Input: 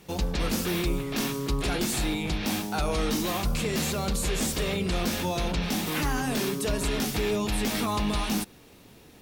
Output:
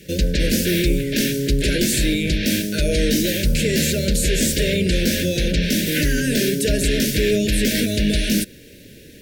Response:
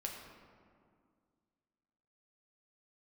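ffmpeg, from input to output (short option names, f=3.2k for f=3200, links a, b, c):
-af "acontrast=54,asuperstop=centerf=970:order=20:qfactor=1.1,volume=3dB"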